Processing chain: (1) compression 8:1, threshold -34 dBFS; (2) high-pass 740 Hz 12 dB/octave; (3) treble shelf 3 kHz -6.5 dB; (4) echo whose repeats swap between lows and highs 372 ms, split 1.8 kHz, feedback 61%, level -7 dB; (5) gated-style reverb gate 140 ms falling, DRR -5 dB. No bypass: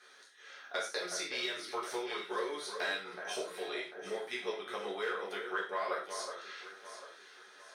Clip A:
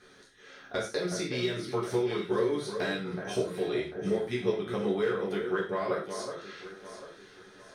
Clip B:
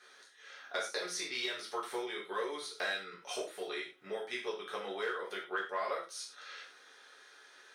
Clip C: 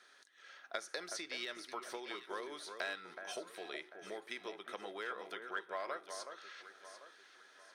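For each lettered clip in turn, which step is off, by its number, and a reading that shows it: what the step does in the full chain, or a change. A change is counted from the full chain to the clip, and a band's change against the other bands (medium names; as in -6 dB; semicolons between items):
2, 250 Hz band +14.5 dB; 4, momentary loudness spread change +4 LU; 5, echo-to-direct 6.0 dB to -7.5 dB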